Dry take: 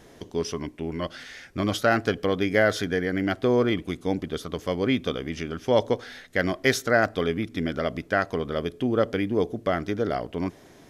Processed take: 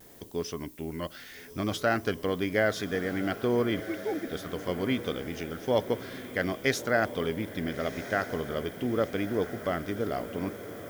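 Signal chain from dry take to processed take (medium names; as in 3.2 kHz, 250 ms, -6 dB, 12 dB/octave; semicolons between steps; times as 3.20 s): 3.80–4.28 s: formants replaced by sine waves; added noise violet -49 dBFS; vibrato 0.78 Hz 30 cents; echo that smears into a reverb 1327 ms, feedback 56%, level -12 dB; trim -5 dB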